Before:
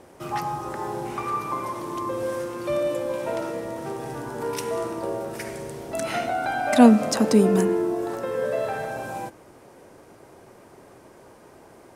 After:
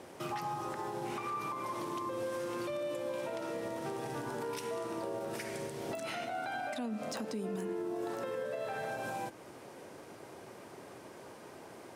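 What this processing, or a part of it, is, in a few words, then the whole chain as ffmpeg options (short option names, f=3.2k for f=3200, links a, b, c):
broadcast voice chain: -af "highpass=100,deesser=0.45,acompressor=threshold=-28dB:ratio=4,equalizer=f=3.4k:t=o:w=1.7:g=4.5,alimiter=level_in=4dB:limit=-24dB:level=0:latency=1:release=221,volume=-4dB,volume=-1.5dB"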